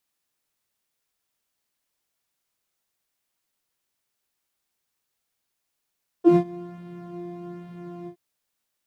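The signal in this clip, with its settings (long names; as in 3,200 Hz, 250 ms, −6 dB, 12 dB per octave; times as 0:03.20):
subtractive patch with pulse-width modulation F4, detune 16 cents, sub −24 dB, noise −8 dB, filter bandpass, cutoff 110 Hz, Q 4.5, filter envelope 2 octaves, filter decay 0.09 s, filter sustain 30%, attack 117 ms, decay 0.08 s, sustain −21 dB, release 0.09 s, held 1.83 s, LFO 1.2 Hz, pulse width 15%, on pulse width 10%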